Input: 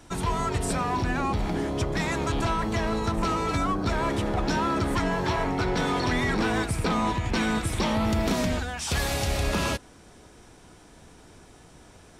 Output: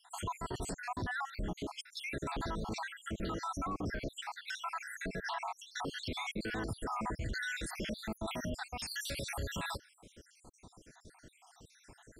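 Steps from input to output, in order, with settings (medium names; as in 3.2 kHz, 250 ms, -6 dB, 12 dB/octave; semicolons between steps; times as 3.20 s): random holes in the spectrogram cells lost 70%; peak limiter -28 dBFS, peak gain reduction 11 dB; trim -2 dB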